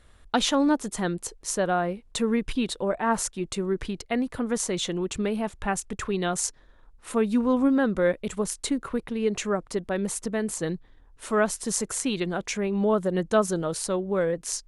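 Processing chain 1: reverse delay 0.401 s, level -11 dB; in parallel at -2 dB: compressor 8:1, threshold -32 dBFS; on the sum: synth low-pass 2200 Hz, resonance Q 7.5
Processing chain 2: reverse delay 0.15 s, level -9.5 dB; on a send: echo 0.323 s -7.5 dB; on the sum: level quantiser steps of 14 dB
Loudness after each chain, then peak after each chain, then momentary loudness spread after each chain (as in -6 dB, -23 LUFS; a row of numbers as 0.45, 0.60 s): -23.0, -31.0 LUFS; -4.5, -11.5 dBFS; 7, 5 LU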